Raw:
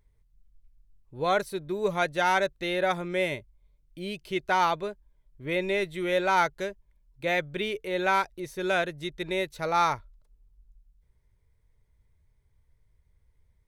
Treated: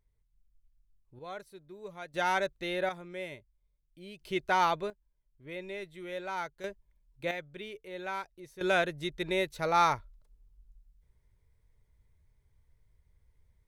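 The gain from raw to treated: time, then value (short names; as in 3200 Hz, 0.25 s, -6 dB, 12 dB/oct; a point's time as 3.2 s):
-9 dB
from 1.19 s -17.5 dB
from 2.14 s -5 dB
from 2.89 s -12.5 dB
from 4.2 s -2.5 dB
from 4.9 s -13 dB
from 6.64 s -4.5 dB
from 7.31 s -12.5 dB
from 8.61 s -1 dB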